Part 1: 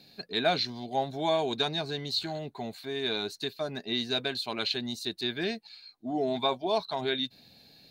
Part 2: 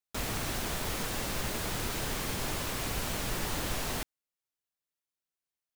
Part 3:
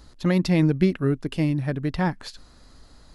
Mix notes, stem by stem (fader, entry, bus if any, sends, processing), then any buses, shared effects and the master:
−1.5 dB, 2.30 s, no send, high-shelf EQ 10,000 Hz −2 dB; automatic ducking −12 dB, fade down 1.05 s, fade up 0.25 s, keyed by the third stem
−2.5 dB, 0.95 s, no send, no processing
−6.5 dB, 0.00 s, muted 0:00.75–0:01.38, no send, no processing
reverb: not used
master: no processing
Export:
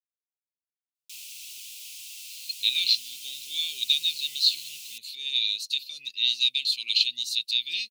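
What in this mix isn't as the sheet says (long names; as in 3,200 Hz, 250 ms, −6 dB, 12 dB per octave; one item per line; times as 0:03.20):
stem 1 −1.5 dB → +10.0 dB
stem 3: muted
master: extra elliptic high-pass filter 2,600 Hz, stop band 40 dB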